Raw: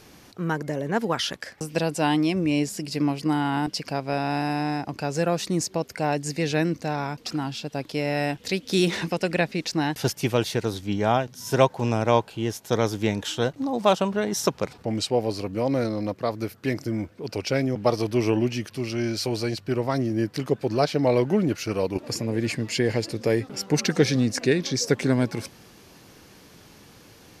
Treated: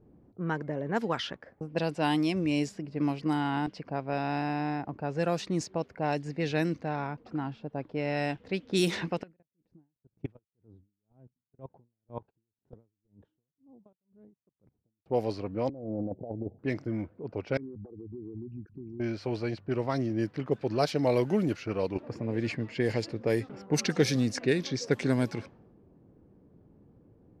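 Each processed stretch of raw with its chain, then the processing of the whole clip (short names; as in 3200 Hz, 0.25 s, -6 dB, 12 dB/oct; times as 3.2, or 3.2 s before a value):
9.23–15.06 bell 600 Hz -5.5 dB 2.3 oct + level quantiser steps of 23 dB + dB-linear tremolo 2 Hz, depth 37 dB
15.69–16.59 steep low-pass 820 Hz 96 dB/oct + negative-ratio compressor -29 dBFS, ratio -0.5
17.57–19 formant sharpening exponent 3 + compressor 4:1, threshold -30 dBFS + fixed phaser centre 1400 Hz, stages 4
whole clip: low-pass opened by the level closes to 370 Hz, open at -17 dBFS; high shelf 10000 Hz +8 dB; gain -5 dB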